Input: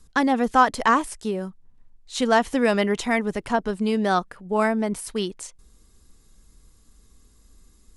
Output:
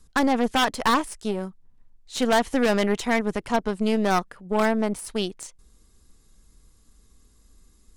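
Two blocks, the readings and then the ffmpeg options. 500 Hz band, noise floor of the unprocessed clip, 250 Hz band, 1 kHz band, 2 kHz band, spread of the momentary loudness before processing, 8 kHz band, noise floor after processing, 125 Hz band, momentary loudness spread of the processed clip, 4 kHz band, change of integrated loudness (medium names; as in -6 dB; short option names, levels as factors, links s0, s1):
-0.5 dB, -57 dBFS, -0.5 dB, -3.0 dB, -1.5 dB, 12 LU, +0.5 dB, -58 dBFS, 0.0 dB, 10 LU, +3.0 dB, -1.0 dB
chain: -af "aeval=exprs='0.224*(abs(mod(val(0)/0.224+3,4)-2)-1)':c=same,aeval=exprs='0.237*(cos(1*acos(clip(val(0)/0.237,-1,1)))-cos(1*PI/2))+0.0119*(cos(3*acos(clip(val(0)/0.237,-1,1)))-cos(3*PI/2))+0.0266*(cos(4*acos(clip(val(0)/0.237,-1,1)))-cos(4*PI/2))+0.0015*(cos(7*acos(clip(val(0)/0.237,-1,1)))-cos(7*PI/2))':c=same"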